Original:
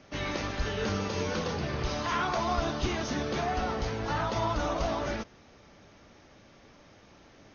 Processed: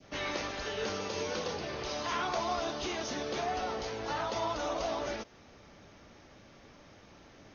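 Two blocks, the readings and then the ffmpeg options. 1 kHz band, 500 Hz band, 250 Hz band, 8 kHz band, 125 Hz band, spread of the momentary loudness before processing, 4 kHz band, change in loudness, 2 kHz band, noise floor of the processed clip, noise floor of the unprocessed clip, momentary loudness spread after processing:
-3.5 dB, -2.5 dB, -7.0 dB, no reading, -12.5 dB, 4 LU, -1.0 dB, -3.5 dB, -3.5 dB, -57 dBFS, -57 dBFS, 4 LU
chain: -filter_complex "[0:a]adynamicequalizer=threshold=0.00708:dfrequency=1400:dqfactor=0.83:tfrequency=1400:tqfactor=0.83:attack=5:release=100:ratio=0.375:range=2.5:mode=cutabove:tftype=bell,acrossover=split=330|2300[s0][s1][s2];[s0]acompressor=threshold=0.00447:ratio=6[s3];[s3][s1][s2]amix=inputs=3:normalize=0"

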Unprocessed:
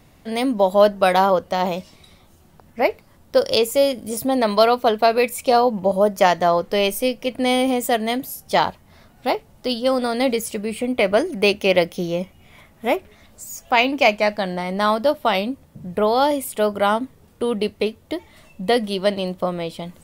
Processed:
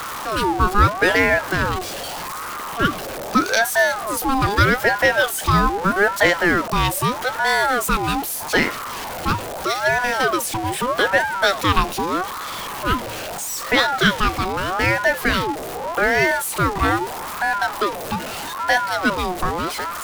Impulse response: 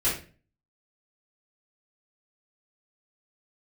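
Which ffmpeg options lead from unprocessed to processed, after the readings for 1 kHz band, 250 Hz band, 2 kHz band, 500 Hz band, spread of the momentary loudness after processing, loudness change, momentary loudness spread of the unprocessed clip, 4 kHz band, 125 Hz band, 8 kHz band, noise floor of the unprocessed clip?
+1.5 dB, -1.0 dB, +8.5 dB, -4.5 dB, 10 LU, +0.5 dB, 11 LU, +1.0 dB, +7.5 dB, +6.0 dB, -52 dBFS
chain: -af "aeval=exprs='val(0)+0.5*0.0794*sgn(val(0))':c=same,aeval=exprs='val(0)*sin(2*PI*880*n/s+880*0.4/0.8*sin(2*PI*0.8*n/s))':c=same,volume=1.12"

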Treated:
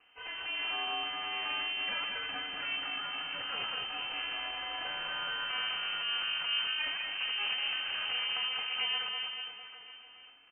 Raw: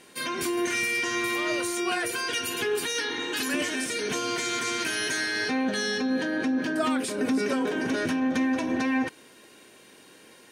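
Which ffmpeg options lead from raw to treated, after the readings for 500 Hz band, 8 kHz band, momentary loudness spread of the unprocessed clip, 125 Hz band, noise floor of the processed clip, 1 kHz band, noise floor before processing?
-21.5 dB, under -40 dB, 3 LU, under -15 dB, -54 dBFS, -7.0 dB, -53 dBFS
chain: -af "bandreject=f=50:t=h:w=6,bandreject=f=100:t=h:w=6,bandreject=f=150:t=h:w=6,bandreject=f=200:t=h:w=6,bandreject=f=250:t=h:w=6,aecho=1:1:200|420|662|928.2|1221:0.631|0.398|0.251|0.158|0.1,aeval=exprs='max(val(0),0)':c=same,lowpass=f=2600:t=q:w=0.5098,lowpass=f=2600:t=q:w=0.6013,lowpass=f=2600:t=q:w=0.9,lowpass=f=2600:t=q:w=2.563,afreqshift=-3100,volume=0.473"

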